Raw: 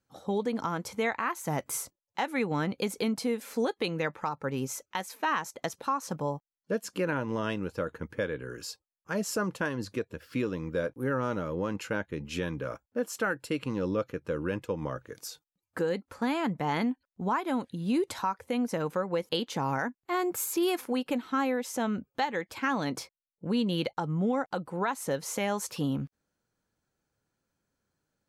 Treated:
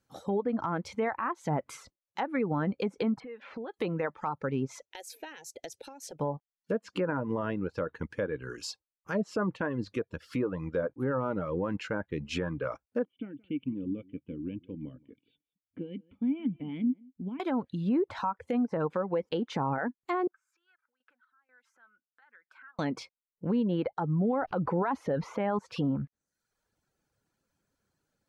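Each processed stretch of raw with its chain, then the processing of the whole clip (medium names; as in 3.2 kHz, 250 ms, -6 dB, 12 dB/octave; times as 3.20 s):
3.20–3.74 s: low-pass 2.9 kHz 24 dB/octave + compression, threshold -39 dBFS
4.84–6.20 s: high-pass 56 Hz + compression 2:1, threshold -44 dBFS + static phaser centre 470 Hz, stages 4
13.05–17.40 s: cascade formant filter i + peaking EQ 100 Hz +3.5 dB 2 oct + delay 173 ms -15 dB
20.27–22.79 s: compression 20:1, threshold -40 dBFS + random-step tremolo 4.1 Hz, depth 85% + band-pass filter 1.5 kHz, Q 8.4
24.42–25.59 s: peaking EQ 7.9 kHz -11.5 dB 0.2 oct + level flattener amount 70%
whole clip: low-pass that closes with the level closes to 1.3 kHz, closed at -26.5 dBFS; reverb removal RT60 0.7 s; peak limiter -24 dBFS; trim +3 dB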